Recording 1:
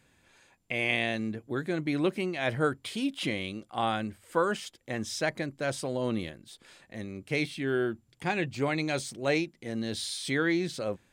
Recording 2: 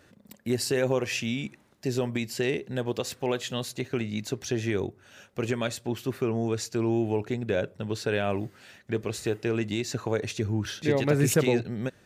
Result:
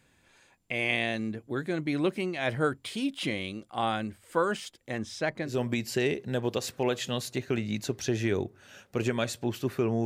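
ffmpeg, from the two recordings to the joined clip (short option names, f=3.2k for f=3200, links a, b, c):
-filter_complex "[0:a]asettb=1/sr,asplit=3[a][b][c];[a]atrim=end=4.984[d];[b]atrim=start=4.98:end=5.6,asetpts=PTS-STARTPTS,afade=t=in:d=0.004:c=qsin,afade=t=out:st=0.616:d=0.004:c=qsin,lowpass=f=3.2k:p=1[e];[c]atrim=start=5.596[f];[d][e]acrossfade=d=0.004:c1=hsin:c2=qsin[g];[g][f]acrossfade=d=0.004:c1=qsin:c2=hsin,apad=whole_dur=10.05,atrim=end=10.05,atrim=end=5.6,asetpts=PTS-STARTPTS[h];[1:a]atrim=start=1.87:end=6.48,asetpts=PTS-STARTPTS[i];[h][i]acrossfade=d=0.16:c1=tri:c2=tri"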